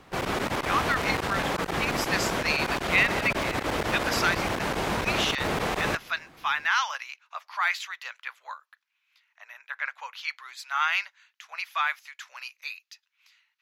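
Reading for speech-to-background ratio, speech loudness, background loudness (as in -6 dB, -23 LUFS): -0.5 dB, -29.0 LUFS, -28.5 LUFS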